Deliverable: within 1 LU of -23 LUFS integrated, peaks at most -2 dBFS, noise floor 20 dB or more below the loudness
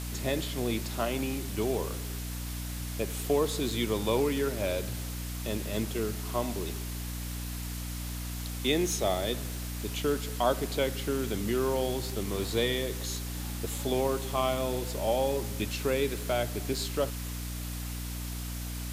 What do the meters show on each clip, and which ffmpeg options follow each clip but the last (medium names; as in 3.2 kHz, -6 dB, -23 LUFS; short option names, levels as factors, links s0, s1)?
hum 60 Hz; highest harmonic 300 Hz; hum level -34 dBFS; noise floor -37 dBFS; noise floor target -52 dBFS; loudness -31.5 LUFS; peak level -13.0 dBFS; loudness target -23.0 LUFS
-> -af "bandreject=f=60:t=h:w=6,bandreject=f=120:t=h:w=6,bandreject=f=180:t=h:w=6,bandreject=f=240:t=h:w=6,bandreject=f=300:t=h:w=6"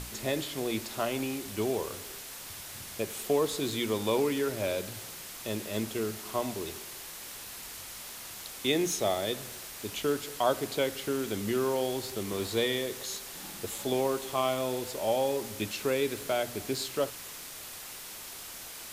hum not found; noise floor -44 dBFS; noise floor target -53 dBFS
-> -af "afftdn=nr=9:nf=-44"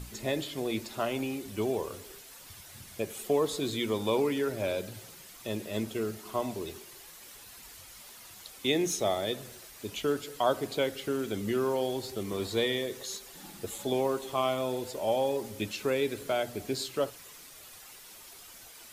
noise floor -50 dBFS; noise floor target -52 dBFS
-> -af "afftdn=nr=6:nf=-50"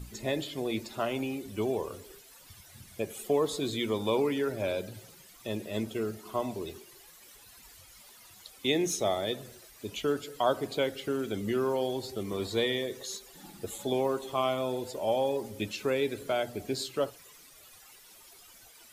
noise floor -55 dBFS; loudness -32.0 LUFS; peak level -14.0 dBFS; loudness target -23.0 LUFS
-> -af "volume=2.82"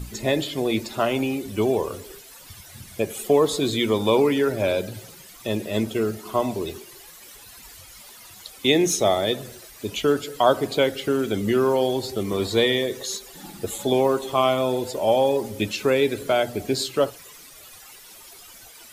loudness -23.0 LUFS; peak level -5.0 dBFS; noise floor -46 dBFS